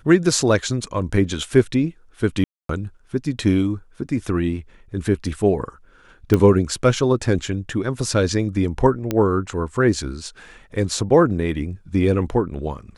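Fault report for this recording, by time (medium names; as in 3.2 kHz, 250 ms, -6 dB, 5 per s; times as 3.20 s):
2.44–2.69 s: dropout 253 ms
6.34 s: pop -6 dBFS
9.11 s: pop -8 dBFS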